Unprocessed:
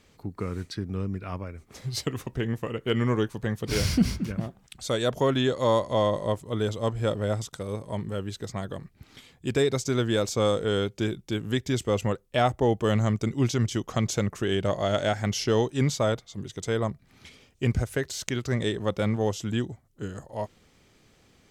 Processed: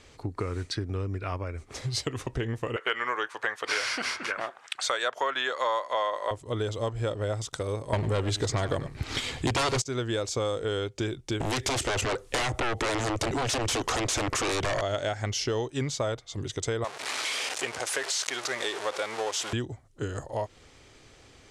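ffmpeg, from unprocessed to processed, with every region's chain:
-filter_complex "[0:a]asettb=1/sr,asplit=3[a][b][c];[a]atrim=end=2.764[d];[b]atrim=start=2.76:end=6.31,asetpts=PTS-STARTPTS,afade=t=in:d=0.004:c=qsin,afade=t=out:st=3.546:d=0.004:c=qsin,highpass=550,equalizer=f=1.5k:t=o:w=2.1:g=13.5[e];[c]atrim=start=6.306[f];[d][e]acrossfade=d=0.004:c1=hsin:c2=qsin[g];[g][f]acrossfade=d=0.004:c1=qsin:c2=hsin,asettb=1/sr,asplit=3[h][i][j];[h]atrim=end=7.934[k];[i]atrim=start=7.93:end=9.82,asetpts=PTS-STARTPTS,afade=t=in:d=0.004:c=qsin,afade=t=out:st=1.886:d=0.004:c=qsin,aeval=exprs='0.237*sin(PI/2*4.47*val(0)/0.237)':c=same,aecho=1:1:97:0.168,atrim=end_sample=83349[l];[j]atrim=start=9.816[m];[k][l]acrossfade=d=0.004:c1=hsin:c2=qsin[n];[n][m]acrossfade=d=0.004:c1=qsin:c2=hsin,asettb=1/sr,asplit=3[o][p][q];[o]atrim=end=11.404[r];[p]atrim=start=11.4:end=14.81,asetpts=PTS-STARTPTS,afade=t=in:d=0.004:c=qsin,afade=t=out:st=3.406:d=0.004:c=qsin,lowshelf=f=160:g=-7.5,acompressor=threshold=-33dB:ratio=4:attack=3.2:release=140:knee=1:detection=peak,aeval=exprs='0.0891*sin(PI/2*7.08*val(0)/0.0891)':c=same[s];[q]atrim=start=14.806[t];[r][s]acrossfade=d=0.004:c1=hsin:c2=qsin[u];[u][t]acrossfade=d=0.004:c1=qsin:c2=hsin,asettb=1/sr,asplit=3[v][w][x];[v]atrim=end=16.844[y];[w]atrim=start=16.84:end=19.53,asetpts=PTS-STARTPTS,afade=t=in:d=0.004:c=qsin,afade=t=out:st=2.686:d=0.004:c=qsin,aeval=exprs='val(0)+0.5*0.0422*sgn(val(0))':c=same,highpass=630,highshelf=f=11k:g=-5[z];[x]atrim=start=19.526[aa];[y][z]acrossfade=d=0.004:c1=hsin:c2=qsin[ab];[ab][aa]acrossfade=d=0.004:c1=qsin:c2=hsin,lowpass=f=10k:w=0.5412,lowpass=f=10k:w=1.3066,equalizer=f=190:t=o:w=0.52:g=-13.5,acompressor=threshold=-35dB:ratio=4,volume=7dB"

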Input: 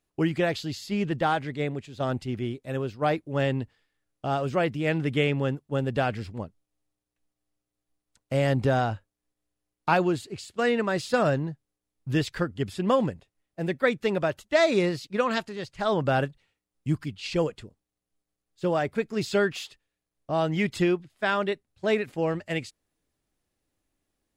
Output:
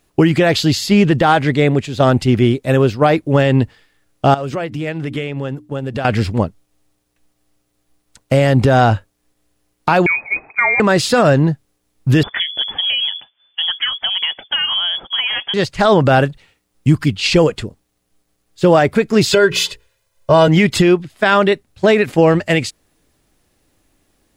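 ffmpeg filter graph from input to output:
-filter_complex "[0:a]asettb=1/sr,asplit=3[a][b][c];[a]atrim=end=4.344[d];[b]atrim=start=4.34:end=6.05,asetpts=PTS-STARTPTS,afade=t=in:d=0.004:c=qsin,afade=t=out:st=1.706:d=0.004:c=qsin,agate=range=-6dB:threshold=-25dB:ratio=16:release=100:detection=peak,bandreject=f=60:t=h:w=6,bandreject=f=120:t=h:w=6,bandreject=f=180:t=h:w=6,bandreject=f=240:t=h:w=6,bandreject=f=300:t=h:w=6,acompressor=threshold=-37dB:ratio=8:attack=3.2:release=140:knee=1:detection=peak[e];[c]atrim=start=6.046[f];[d][e]acrossfade=d=0.004:c1=hsin:c2=qsin[g];[g][f]acrossfade=d=0.004:c1=qsin:c2=hsin,asettb=1/sr,asplit=3[h][i][j];[h]atrim=end=10.064[k];[i]atrim=start=10.06:end=10.8,asetpts=PTS-STARTPTS,afade=t=in:d=0.004:c=qsin,afade=t=out:st=0.736:d=0.004:c=qsin,equalizer=f=1.8k:w=1.3:g=4,acompressor=threshold=-30dB:ratio=5:attack=3.2:release=140:knee=1:detection=peak,lowpass=f=2.2k:t=q:w=0.5098,lowpass=f=2.2k:t=q:w=0.6013,lowpass=f=2.2k:t=q:w=0.9,lowpass=f=2.2k:t=q:w=2.563,afreqshift=-2600[l];[j]atrim=start=10.796[m];[k][l]acrossfade=d=0.004:c1=hsin:c2=qsin[n];[n][m]acrossfade=d=0.004:c1=qsin:c2=hsin,asettb=1/sr,asplit=3[o][p][q];[o]atrim=end=12.234[r];[p]atrim=start=12.23:end=15.54,asetpts=PTS-STARTPTS,afade=t=in:d=0.004:c=qsin,afade=t=out:st=3.306:d=0.004:c=qsin,acompressor=threshold=-34dB:ratio=8:attack=3.2:release=140:knee=1:detection=peak,lowpass=f=3k:t=q:w=0.5098,lowpass=f=3k:t=q:w=0.6013,lowpass=f=3k:t=q:w=0.9,lowpass=f=3k:t=q:w=2.563,afreqshift=-3500[s];[q]atrim=start=15.536[t];[r][s]acrossfade=d=0.004:c1=hsin:c2=qsin[u];[u][t]acrossfade=d=0.004:c1=qsin:c2=hsin,asettb=1/sr,asplit=3[v][w][x];[v]atrim=end=19.334[y];[w]atrim=start=19.33:end=20.48,asetpts=PTS-STARTPTS,afade=t=in:d=0.004:c=qsin,afade=t=out:st=1.146:d=0.004:c=qsin,bandreject=f=60:t=h:w=6,bandreject=f=120:t=h:w=6,bandreject=f=180:t=h:w=6,bandreject=f=240:t=h:w=6,bandreject=f=300:t=h:w=6,bandreject=f=360:t=h:w=6,bandreject=f=420:t=h:w=6,bandreject=f=480:t=h:w=6,aecho=1:1:2:0.94,atrim=end_sample=50715[z];[x]atrim=start=20.476[aa];[y][z]acrossfade=d=0.004:c1=hsin:c2=qsin[ab];[ab][aa]acrossfade=d=0.004:c1=qsin:c2=hsin,acompressor=threshold=-24dB:ratio=6,alimiter=level_in=19.5dB:limit=-1dB:release=50:level=0:latency=1,volume=-1dB"

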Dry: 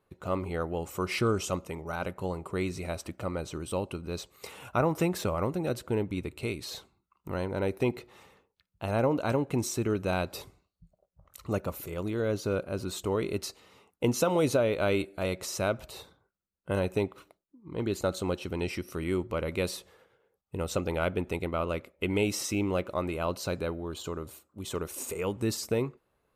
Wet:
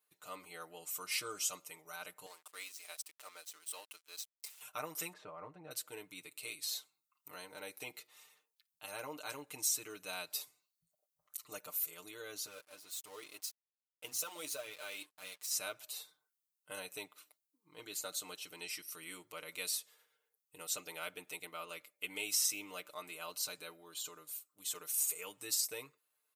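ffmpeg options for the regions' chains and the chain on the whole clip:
-filter_complex "[0:a]asettb=1/sr,asplit=3[a][b][c];[a]atrim=end=2.264[d];[b]atrim=start=2.26:end=4.61,asetpts=PTS-STARTPTS,afade=t=in:d=0.004:c=qsin,afade=t=out:st=2.346:d=0.004:c=qsin,highpass=530,aeval=exprs='sgn(val(0))*max(abs(val(0))-0.00422,0)':c=same[e];[c]atrim=start=4.606[f];[d][e]acrossfade=d=0.004:c1=hsin:c2=qsin[g];[g][f]acrossfade=d=0.004:c1=qsin:c2=hsin,asettb=1/sr,asplit=3[h][i][j];[h]atrim=end=5.134[k];[i]atrim=start=5.13:end=5.71,asetpts=PTS-STARTPTS,afade=t=in:d=0.004:c=qsin,afade=t=out:st=0.576:d=0.004:c=qsin,lowpass=1.3k,asubboost=boost=10.5:cutoff=170[l];[j]atrim=start=5.706[m];[k][l]acrossfade=d=0.004:c1=hsin:c2=qsin[n];[n][m]acrossfade=d=0.004:c1=qsin:c2=hsin,asettb=1/sr,asplit=3[o][p][q];[o]atrim=end=12.464[r];[p]atrim=start=12.46:end=15.51,asetpts=PTS-STARTPTS,afade=t=in:d=0.004:c=qsin,afade=t=out:st=3.046:d=0.004:c=qsin,bandreject=f=60:t=h:w=6,bandreject=f=120:t=h:w=6,bandreject=f=180:t=h:w=6,bandreject=f=240:t=h:w=6,bandreject=f=300:t=h:w=6,flanger=delay=0.4:depth=3.4:regen=36:speed=1.8:shape=triangular,aeval=exprs='sgn(val(0))*max(abs(val(0))-0.00398,0)':c=same[s];[q]atrim=start=15.506[t];[r][s]acrossfade=d=0.004:c1=hsin:c2=qsin[u];[u][t]acrossfade=d=0.004:c1=qsin:c2=hsin,aderivative,aecho=1:1:6.6:0.86,volume=1dB"

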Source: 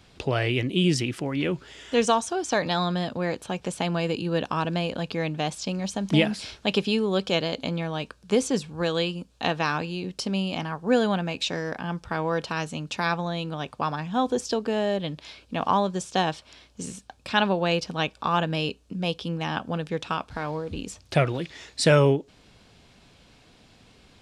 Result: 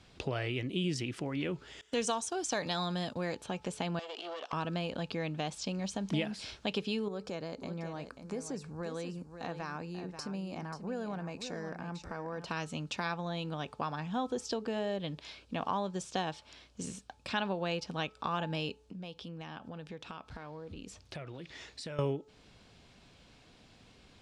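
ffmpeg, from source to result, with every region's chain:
-filter_complex "[0:a]asettb=1/sr,asplit=3[a][b][c];[a]atrim=end=1.814[d];[b]atrim=start=1.81:end=3.35,asetpts=PTS-STARTPTS,afade=t=in:d=0.004:c=qsin,afade=t=out:st=1.536:d=0.004:c=qsin,agate=range=-33dB:threshold=-34dB:ratio=3:release=100:detection=peak,highshelf=f=5.8k:g=12[e];[c]atrim=start=3.346[f];[d][e]acrossfade=d=0.004:c1=hsin:c2=qsin[g];[g][f]acrossfade=d=0.004:c1=qsin:c2=hsin,asettb=1/sr,asplit=3[h][i][j];[h]atrim=end=3.994[k];[i]atrim=start=3.99:end=4.53,asetpts=PTS-STARTPTS,afade=t=in:d=0.004:c=qsin,afade=t=out:st=0.536:d=0.004:c=qsin,aeval=exprs='clip(val(0),-1,0.0266)':c=same,highpass=f=400:w=0.5412,highpass=f=400:w=1.3066,equalizer=f=670:t=q:w=4:g=7,equalizer=f=1.2k:t=q:w=4:g=7,equalizer=f=3.2k:t=q:w=4:g=10,equalizer=f=5.4k:t=q:w=4:g=4,lowpass=f=8.3k:w=0.5412,lowpass=f=8.3k:w=1.3066,acompressor=threshold=-33dB:ratio=6:attack=3.2:release=140:knee=1:detection=peak[l];[j]atrim=start=4.526[m];[k][l]acrossfade=d=0.004:c1=hsin:c2=qsin[n];[n][m]acrossfade=d=0.004:c1=qsin:c2=hsin,asettb=1/sr,asplit=3[o][p][q];[o]atrim=end=7.084[r];[p]atrim=start=7.08:end=12.46,asetpts=PTS-STARTPTS,afade=t=in:d=0.004:c=qsin,afade=t=out:st=5.376:d=0.004:c=qsin,equalizer=f=3.2k:t=o:w=0.6:g=-14,acompressor=threshold=-36dB:ratio=2:attack=3.2:release=140:knee=1:detection=peak,aecho=1:1:537:0.316,atrim=end_sample=237258[s];[q]atrim=start=12.456[t];[r][s]acrossfade=d=0.004:c1=hsin:c2=qsin[u];[u][t]acrossfade=d=0.004:c1=qsin:c2=hsin,asettb=1/sr,asplit=3[v][w][x];[v]atrim=end=18.854[y];[w]atrim=start=18.85:end=21.99,asetpts=PTS-STARTPTS,afade=t=in:d=0.004:c=qsin,afade=t=out:st=3.136:d=0.004:c=qsin,acompressor=threshold=-38dB:ratio=4:attack=3.2:release=140:knee=1:detection=peak,equalizer=f=8.1k:t=o:w=0.99:g=-2.5[z];[x]atrim=start=21.986[aa];[y][z]acrossfade=d=0.004:c1=hsin:c2=qsin[ab];[ab][aa]acrossfade=d=0.004:c1=qsin:c2=hsin,lowpass=9.7k,bandreject=f=432.2:t=h:w=4,bandreject=f=864.4:t=h:w=4,bandreject=f=1.2966k:t=h:w=4,acompressor=threshold=-30dB:ratio=2,volume=-4.5dB"

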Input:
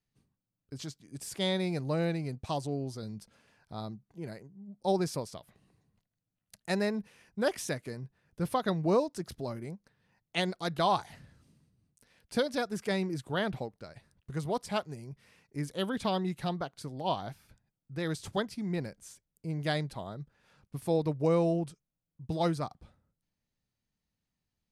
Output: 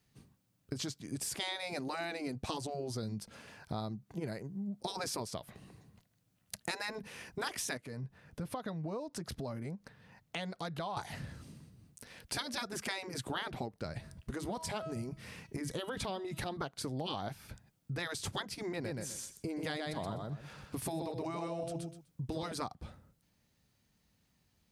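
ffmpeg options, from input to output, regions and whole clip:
-filter_complex "[0:a]asettb=1/sr,asplit=3[a][b][c];[a]atrim=end=7.774[d];[b]atrim=start=7.77:end=10.97,asetpts=PTS-STARTPTS,afade=t=in:d=0.004:c=qsin,afade=t=out:st=3.196:d=0.004:c=qsin,highshelf=f=4.3k:g=-5,acompressor=threshold=-55dB:ratio=2:attack=3.2:release=140:knee=1:detection=peak,bandreject=f=360:w=6.8[e];[c]atrim=start=10.966[f];[d][e]acrossfade=d=0.004:c1=hsin:c2=qsin[g];[g][f]acrossfade=d=0.004:c1=qsin:c2=hsin,asettb=1/sr,asplit=3[h][i][j];[h]atrim=end=13.854[k];[i]atrim=start=13.85:end=16.57,asetpts=PTS-STARTPTS,afade=t=in:d=0.004:c=qsin,afade=t=out:st=2.716:d=0.004:c=qsin,bass=f=250:g=7,treble=f=4k:g=0,bandreject=f=322.8:t=h:w=4,bandreject=f=645.6:t=h:w=4,bandreject=f=968.4:t=h:w=4,bandreject=f=1.2912k:t=h:w=4,bandreject=f=1.614k:t=h:w=4,bandreject=f=1.9368k:t=h:w=4,bandreject=f=2.2596k:t=h:w=4,bandreject=f=2.5824k:t=h:w=4,bandreject=f=2.9052k:t=h:w=4,bandreject=f=3.228k:t=h:w=4,bandreject=f=3.5508k:t=h:w=4,bandreject=f=3.8736k:t=h:w=4,bandreject=f=4.1964k:t=h:w=4,bandreject=f=4.5192k:t=h:w=4,bandreject=f=4.842k:t=h:w=4,bandreject=f=5.1648k:t=h:w=4,bandreject=f=5.4876k:t=h:w=4,bandreject=f=5.8104k:t=h:w=4,bandreject=f=6.1332k:t=h:w=4,bandreject=f=6.456k:t=h:w=4,bandreject=f=6.7788k:t=h:w=4,bandreject=f=7.1016k:t=h:w=4,bandreject=f=7.4244k:t=h:w=4,bandreject=f=7.7472k:t=h:w=4,bandreject=f=8.07k:t=h:w=4,bandreject=f=8.3928k:t=h:w=4,bandreject=f=8.7156k:t=h:w=4,bandreject=f=9.0384k:t=h:w=4,bandreject=f=9.3612k:t=h:w=4,bandreject=f=9.684k:t=h:w=4,bandreject=f=10.0068k:t=h:w=4,acompressor=threshold=-33dB:ratio=6:attack=3.2:release=140:knee=1:detection=peak[l];[j]atrim=start=16.566[m];[k][l]acrossfade=d=0.004:c1=hsin:c2=qsin[n];[n][m]acrossfade=d=0.004:c1=qsin:c2=hsin,asettb=1/sr,asplit=3[o][p][q];[o]atrim=end=18.724[r];[p]atrim=start=18.72:end=22.52,asetpts=PTS-STARTPTS,afade=t=in:d=0.004:c=qsin,afade=t=out:st=3.796:d=0.004:c=qsin,aecho=1:1:125|250|375:0.562|0.0956|0.0163,atrim=end_sample=167580,acompressor=threshold=-33dB:ratio=2.5:attack=3.2:release=140:knee=1:detection=peak[s];[q]atrim=start=22.516[t];[r][s]acrossfade=d=0.004:c1=hsin:c2=qsin[u];[u][t]acrossfade=d=0.004:c1=qsin:c2=hsin,afftfilt=real='re*lt(hypot(re,im),0.112)':imag='im*lt(hypot(re,im),0.112)':win_size=1024:overlap=0.75,highpass=41,acompressor=threshold=-49dB:ratio=5,volume=12.5dB"

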